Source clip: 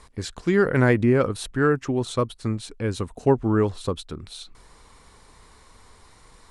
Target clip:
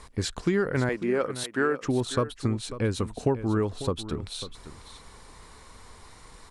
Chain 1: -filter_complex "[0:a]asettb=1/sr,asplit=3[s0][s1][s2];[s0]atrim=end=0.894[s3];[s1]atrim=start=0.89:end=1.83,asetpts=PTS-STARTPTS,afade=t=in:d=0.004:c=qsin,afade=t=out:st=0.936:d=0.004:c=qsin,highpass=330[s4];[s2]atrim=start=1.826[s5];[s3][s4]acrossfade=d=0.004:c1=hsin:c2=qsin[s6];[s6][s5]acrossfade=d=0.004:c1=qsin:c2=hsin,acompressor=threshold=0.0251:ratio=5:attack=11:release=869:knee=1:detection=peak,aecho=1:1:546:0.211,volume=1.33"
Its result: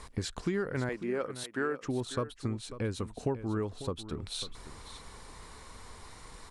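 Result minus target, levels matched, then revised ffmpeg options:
compression: peak gain reduction +7 dB
-filter_complex "[0:a]asettb=1/sr,asplit=3[s0][s1][s2];[s0]atrim=end=0.894[s3];[s1]atrim=start=0.89:end=1.83,asetpts=PTS-STARTPTS,afade=t=in:d=0.004:c=qsin,afade=t=out:st=0.936:d=0.004:c=qsin,highpass=330[s4];[s2]atrim=start=1.826[s5];[s3][s4]acrossfade=d=0.004:c1=hsin:c2=qsin[s6];[s6][s5]acrossfade=d=0.004:c1=qsin:c2=hsin,acompressor=threshold=0.0708:ratio=5:attack=11:release=869:knee=1:detection=peak,aecho=1:1:546:0.211,volume=1.33"

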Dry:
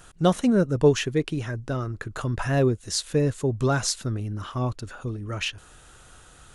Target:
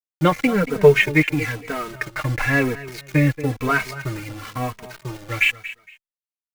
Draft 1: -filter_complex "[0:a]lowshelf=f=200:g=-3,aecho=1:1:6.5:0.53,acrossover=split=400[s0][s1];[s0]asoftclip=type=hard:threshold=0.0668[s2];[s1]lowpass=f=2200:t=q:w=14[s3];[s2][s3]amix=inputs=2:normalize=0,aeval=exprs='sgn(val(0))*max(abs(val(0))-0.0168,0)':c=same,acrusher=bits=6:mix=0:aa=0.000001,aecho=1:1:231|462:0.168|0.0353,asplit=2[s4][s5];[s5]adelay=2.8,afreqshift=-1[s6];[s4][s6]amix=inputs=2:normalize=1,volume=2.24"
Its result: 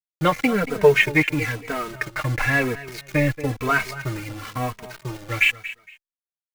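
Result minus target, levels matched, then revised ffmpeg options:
hard clipper: distortion +17 dB
-filter_complex "[0:a]lowshelf=f=200:g=-3,aecho=1:1:6.5:0.53,acrossover=split=400[s0][s1];[s0]asoftclip=type=hard:threshold=0.211[s2];[s1]lowpass=f=2200:t=q:w=14[s3];[s2][s3]amix=inputs=2:normalize=0,aeval=exprs='sgn(val(0))*max(abs(val(0))-0.0168,0)':c=same,acrusher=bits=6:mix=0:aa=0.000001,aecho=1:1:231|462:0.168|0.0353,asplit=2[s4][s5];[s5]adelay=2.8,afreqshift=-1[s6];[s4][s6]amix=inputs=2:normalize=1,volume=2.24"

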